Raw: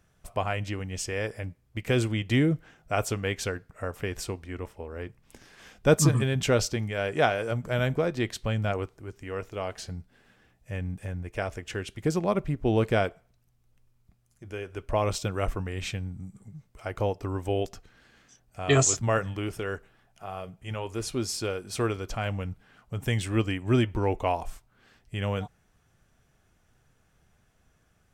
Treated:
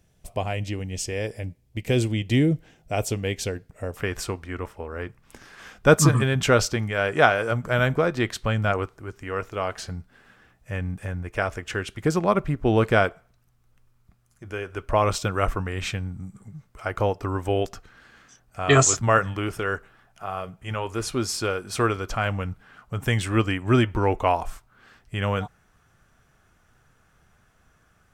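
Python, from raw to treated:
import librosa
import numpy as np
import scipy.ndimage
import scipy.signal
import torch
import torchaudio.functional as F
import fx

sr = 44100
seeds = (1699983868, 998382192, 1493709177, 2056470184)

y = fx.peak_eq(x, sr, hz=1300.0, db=fx.steps((0.0, -10.5), (3.97, 7.0)), octaves=0.97)
y = F.gain(torch.from_numpy(y), 3.5).numpy()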